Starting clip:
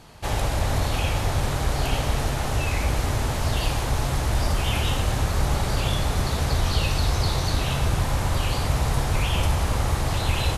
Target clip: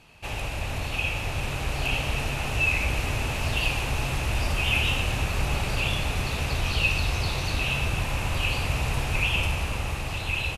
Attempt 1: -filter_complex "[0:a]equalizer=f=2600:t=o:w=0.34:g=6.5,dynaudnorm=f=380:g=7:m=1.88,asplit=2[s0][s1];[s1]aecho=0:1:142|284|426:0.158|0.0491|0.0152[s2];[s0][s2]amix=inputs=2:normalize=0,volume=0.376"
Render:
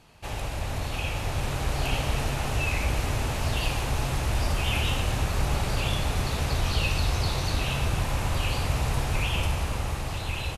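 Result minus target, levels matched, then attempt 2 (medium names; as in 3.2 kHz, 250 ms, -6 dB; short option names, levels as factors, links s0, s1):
2 kHz band -4.0 dB
-filter_complex "[0:a]equalizer=f=2600:t=o:w=0.34:g=16,dynaudnorm=f=380:g=7:m=1.88,asplit=2[s0][s1];[s1]aecho=0:1:142|284|426:0.158|0.0491|0.0152[s2];[s0][s2]amix=inputs=2:normalize=0,volume=0.376"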